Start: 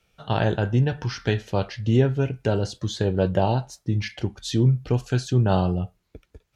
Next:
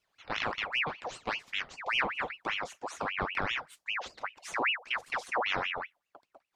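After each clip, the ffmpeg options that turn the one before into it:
-af "aeval=exprs='val(0)*sin(2*PI*1700*n/s+1700*0.65/5.1*sin(2*PI*5.1*n/s))':c=same,volume=-9dB"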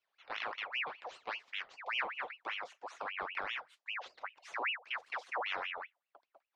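-filter_complex "[0:a]acrossover=split=380 5100:gain=0.126 1 0.158[a][b][c];[a][b][c]amix=inputs=3:normalize=0,volume=-6dB"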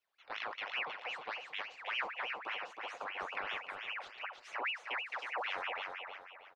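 -af "aecho=1:1:316|632|948|1264|1580:0.596|0.22|0.0815|0.0302|0.0112,volume=-1.5dB"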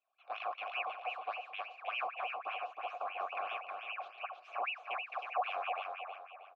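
-filter_complex "[0:a]asplit=3[a][b][c];[a]bandpass=f=730:t=q:w=8,volume=0dB[d];[b]bandpass=f=1.09k:t=q:w=8,volume=-6dB[e];[c]bandpass=f=2.44k:t=q:w=8,volume=-9dB[f];[d][e][f]amix=inputs=3:normalize=0,volume=11dB"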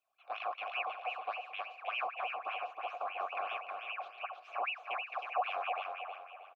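-af "aecho=1:1:382:0.0944,volume=1dB"

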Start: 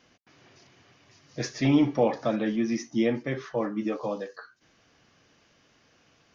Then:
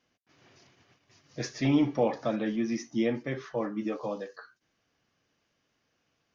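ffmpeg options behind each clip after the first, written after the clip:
-af "agate=range=-10dB:threshold=-58dB:ratio=16:detection=peak,volume=-3dB"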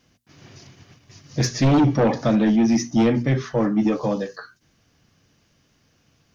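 -filter_complex "[0:a]bass=f=250:g=12,treble=f=4k:g=6,bandreject=f=60:t=h:w=6,bandreject=f=120:t=h:w=6,bandreject=f=180:t=h:w=6,bandreject=f=240:t=h:w=6,asplit=2[a][b];[b]aeval=exprs='0.398*sin(PI/2*3.98*val(0)/0.398)':c=same,volume=-10.5dB[c];[a][c]amix=inputs=2:normalize=0"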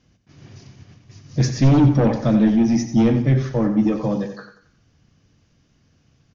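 -filter_complex "[0:a]lowshelf=f=260:g=10,asplit=2[a][b];[b]aecho=0:1:90|180|270|360:0.316|0.126|0.0506|0.0202[c];[a][c]amix=inputs=2:normalize=0,aresample=16000,aresample=44100,volume=-3.5dB"

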